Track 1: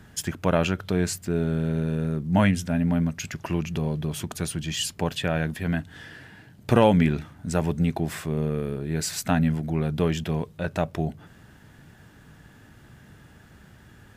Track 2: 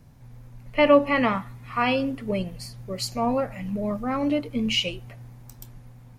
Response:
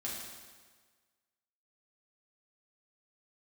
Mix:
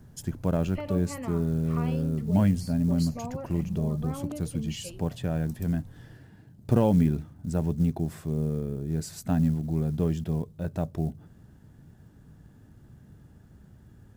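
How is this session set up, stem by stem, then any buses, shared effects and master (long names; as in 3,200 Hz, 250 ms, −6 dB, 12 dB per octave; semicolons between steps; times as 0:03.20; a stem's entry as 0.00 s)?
−9.5 dB, 0.00 s, no send, low-shelf EQ 400 Hz +10 dB; floating-point word with a short mantissa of 4 bits
−3.5 dB, 0.00 s, no send, downward compressor 5 to 1, threshold −31 dBFS, peak gain reduction 17.5 dB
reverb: not used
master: parametric band 2,300 Hz −8 dB 1.7 octaves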